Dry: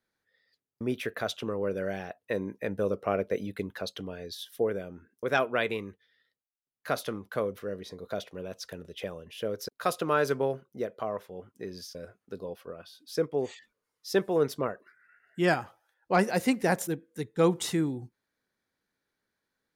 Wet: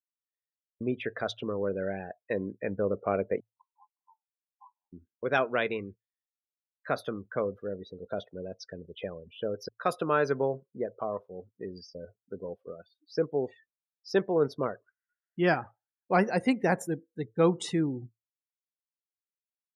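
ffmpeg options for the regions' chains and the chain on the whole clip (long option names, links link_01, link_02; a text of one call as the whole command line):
ffmpeg -i in.wav -filter_complex "[0:a]asettb=1/sr,asplit=3[link_01][link_02][link_03];[link_01]atrim=end=3.404[link_04];[link_02]atrim=start=3.4:end=4.93,asetpts=PTS-STARTPTS,afade=type=in:duration=0.004:curve=qsin,afade=type=out:start_time=1.526:duration=0.004:curve=qsin,aeval=exprs='0.0794*(abs(mod(val(0)/0.0794+3,4)-2)-1)':channel_layout=same,asuperpass=centerf=930:order=8:qfactor=3.4[link_05];[link_03]atrim=start=4.926[link_06];[link_04][link_05]acrossfade=duration=0.004:curve1=hsin:curve2=qsin[link_07];[link_07][link_06]acrossfade=duration=0.004:curve1=qsin:curve2=hsin,highshelf=frequency=5000:gain=-4.5,bandreject=frequency=55.98:width_type=h:width=4,bandreject=frequency=111.96:width_type=h:width=4,afftdn=noise_reduction=34:noise_floor=-42" out.wav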